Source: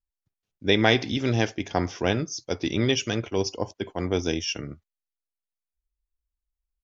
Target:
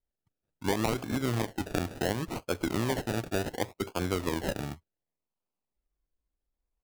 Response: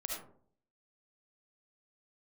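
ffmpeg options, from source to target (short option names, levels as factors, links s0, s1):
-af "acrusher=samples=33:mix=1:aa=0.000001:lfo=1:lforange=19.8:lforate=0.69,acompressor=threshold=0.0501:ratio=4"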